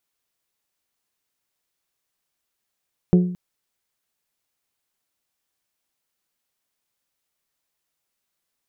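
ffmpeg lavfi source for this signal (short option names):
-f lavfi -i "aevalsrc='0.355*pow(10,-3*t/0.61)*sin(2*PI*179*t)+0.158*pow(10,-3*t/0.375)*sin(2*PI*358*t)+0.0708*pow(10,-3*t/0.331)*sin(2*PI*429.6*t)+0.0316*pow(10,-3*t/0.283)*sin(2*PI*537*t)+0.0141*pow(10,-3*t/0.231)*sin(2*PI*716*t)':d=0.22:s=44100"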